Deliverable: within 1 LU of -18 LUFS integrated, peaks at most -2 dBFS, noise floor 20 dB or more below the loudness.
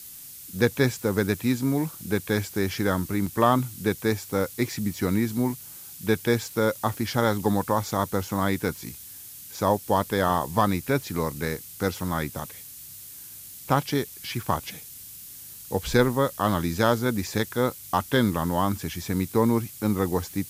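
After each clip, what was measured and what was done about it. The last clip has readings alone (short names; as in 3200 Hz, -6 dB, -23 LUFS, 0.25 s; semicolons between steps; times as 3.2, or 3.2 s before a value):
dropouts 1; longest dropout 4.8 ms; noise floor -43 dBFS; noise floor target -46 dBFS; loudness -26.0 LUFS; peak -6.5 dBFS; loudness target -18.0 LUFS
-> interpolate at 3.26, 4.8 ms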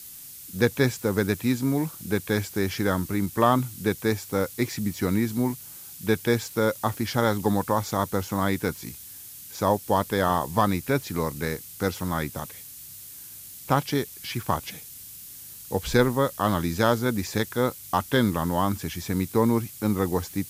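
dropouts 0; noise floor -43 dBFS; noise floor target -46 dBFS
-> denoiser 6 dB, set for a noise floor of -43 dBFS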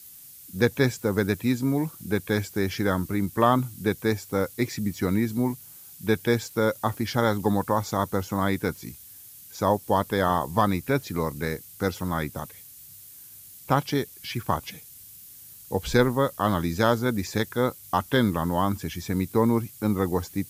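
noise floor -47 dBFS; loudness -26.0 LUFS; peak -6.0 dBFS; loudness target -18.0 LUFS
-> gain +8 dB; limiter -2 dBFS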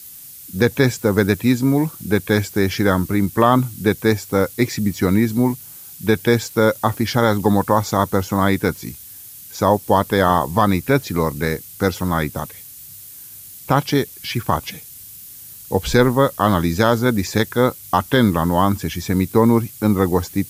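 loudness -18.5 LUFS; peak -2.0 dBFS; noise floor -39 dBFS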